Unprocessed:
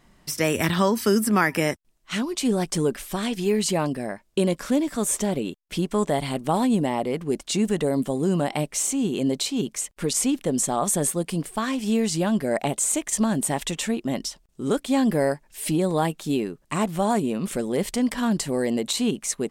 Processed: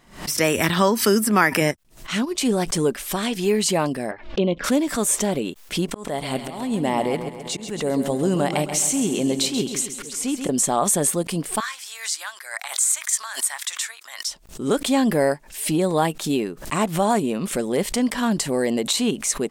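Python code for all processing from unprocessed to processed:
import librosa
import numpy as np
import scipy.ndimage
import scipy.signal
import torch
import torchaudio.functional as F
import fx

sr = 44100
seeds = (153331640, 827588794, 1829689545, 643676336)

y = fx.chain(x, sr, fx.peak_eq(hz=92.0, db=6.5, octaves=2.5),
    fx.transient(attack_db=-2, sustain_db=-11), at=(1.61, 2.41))
y = fx.chain(y, sr, fx.lowpass(hz=3500.0, slope=24),
    fx.env_flanger(rest_ms=4.3, full_db=-19.5), at=(4.11, 4.64))
y = fx.chain(y, sr, fx.auto_swell(attack_ms=424.0),
    fx.echo_feedback(ms=134, feedback_pct=55, wet_db=-9.5), at=(5.88, 10.49))
y = fx.chain(y, sr, fx.highpass(hz=1200.0, slope=24),
    fx.peak_eq(hz=2800.0, db=-9.0, octaves=0.4), at=(11.6, 14.28))
y = fx.low_shelf(y, sr, hz=250.0, db=-5.5)
y = fx.pre_swell(y, sr, db_per_s=130.0)
y = y * librosa.db_to_amplitude(4.0)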